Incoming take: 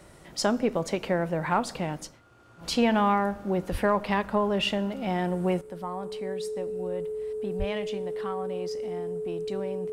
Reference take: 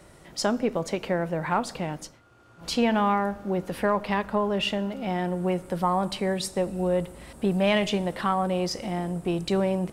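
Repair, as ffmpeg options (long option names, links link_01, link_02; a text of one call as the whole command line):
ffmpeg -i in.wav -filter_complex "[0:a]bandreject=frequency=430:width=30,asplit=3[link_01][link_02][link_03];[link_01]afade=type=out:start_time=3.71:duration=0.02[link_04];[link_02]highpass=frequency=140:width=0.5412,highpass=frequency=140:width=1.3066,afade=type=in:start_time=3.71:duration=0.02,afade=type=out:start_time=3.83:duration=0.02[link_05];[link_03]afade=type=in:start_time=3.83:duration=0.02[link_06];[link_04][link_05][link_06]amix=inputs=3:normalize=0,asplit=3[link_07][link_08][link_09];[link_07]afade=type=out:start_time=7.58:duration=0.02[link_10];[link_08]highpass=frequency=140:width=0.5412,highpass=frequency=140:width=1.3066,afade=type=in:start_time=7.58:duration=0.02,afade=type=out:start_time=7.7:duration=0.02[link_11];[link_09]afade=type=in:start_time=7.7:duration=0.02[link_12];[link_10][link_11][link_12]amix=inputs=3:normalize=0,asetnsamples=nb_out_samples=441:pad=0,asendcmd='5.61 volume volume 11dB',volume=0dB" out.wav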